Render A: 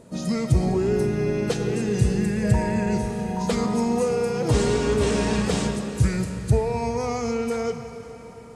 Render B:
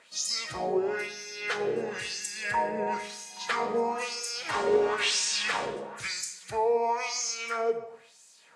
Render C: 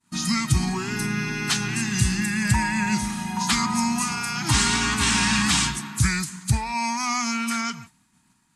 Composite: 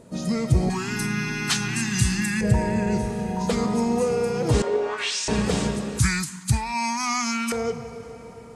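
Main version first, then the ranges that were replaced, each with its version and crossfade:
A
0:00.70–0:02.41: punch in from C
0:04.62–0:05.28: punch in from B
0:05.99–0:07.52: punch in from C

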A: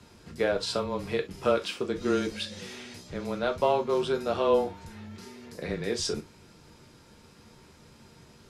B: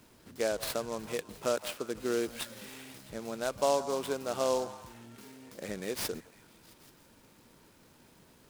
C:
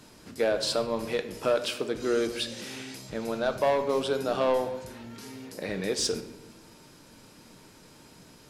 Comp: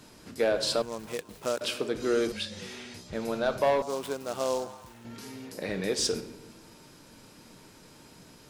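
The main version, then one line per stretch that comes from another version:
C
0:00.82–0:01.61: punch in from B
0:02.32–0:03.13: punch in from A
0:03.82–0:05.05: punch in from B

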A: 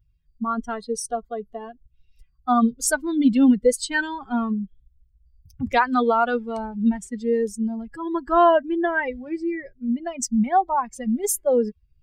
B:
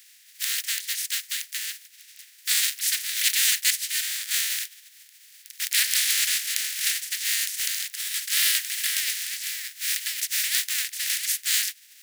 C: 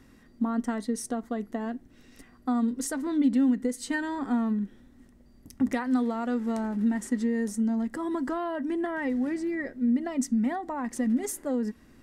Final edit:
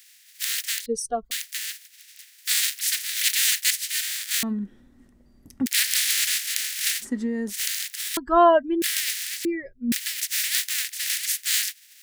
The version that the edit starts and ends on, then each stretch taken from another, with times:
B
0:00.86–0:01.31: punch in from A
0:04.43–0:05.66: punch in from C
0:07.03–0:07.51: punch in from C, crossfade 0.06 s
0:08.17–0:08.82: punch in from A
0:09.45–0:09.92: punch in from A

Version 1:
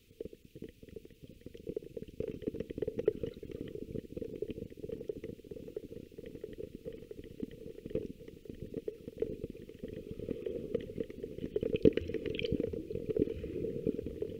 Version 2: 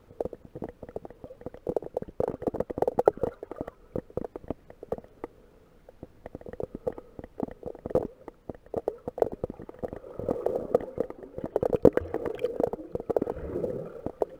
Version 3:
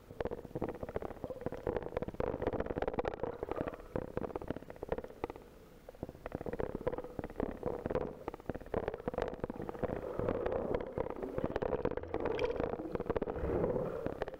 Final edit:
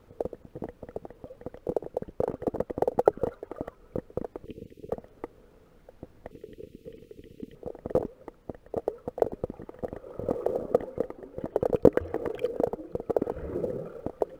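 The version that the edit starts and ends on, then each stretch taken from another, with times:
2
0:04.45–0:04.90: punch in from 1
0:06.31–0:07.55: punch in from 1
not used: 3

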